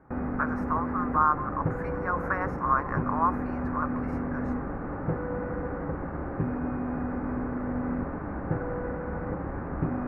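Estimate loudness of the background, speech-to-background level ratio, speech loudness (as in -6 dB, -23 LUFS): -32.5 LUFS, 3.0 dB, -29.5 LUFS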